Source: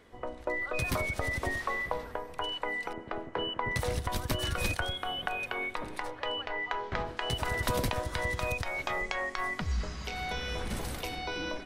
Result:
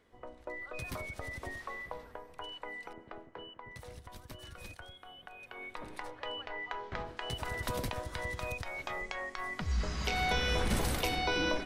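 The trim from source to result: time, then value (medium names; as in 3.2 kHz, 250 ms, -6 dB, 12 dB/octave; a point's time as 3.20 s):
3.05 s -9.5 dB
3.64 s -17 dB
5.33 s -17 dB
5.85 s -6 dB
9.46 s -6 dB
10.03 s +4.5 dB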